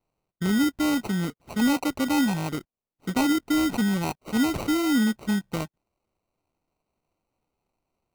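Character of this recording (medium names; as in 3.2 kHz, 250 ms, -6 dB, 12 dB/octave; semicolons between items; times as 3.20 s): aliases and images of a low sample rate 1.7 kHz, jitter 0%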